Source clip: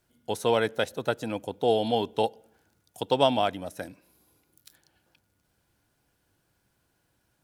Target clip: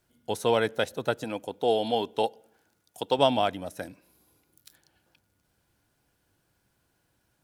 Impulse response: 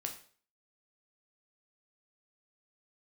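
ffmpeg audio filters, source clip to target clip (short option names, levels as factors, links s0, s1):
-filter_complex "[0:a]asettb=1/sr,asplit=3[s0][s1][s2];[s0]atrim=end=1.244[s3];[s1]atrim=start=1.24:end=3.19,asetpts=PTS-STARTPTS,afade=t=in:d=0.004:c=qsin,afade=t=out:st=1.946:d=0.004:c=qsin,lowshelf=f=140:g=-11[s4];[s2]atrim=start=3.186[s5];[s3][s4]acrossfade=d=0.004:c1=hsin:c2=qsin[s6];[s6][s5]acrossfade=d=0.004:c1=qsin:c2=hsin"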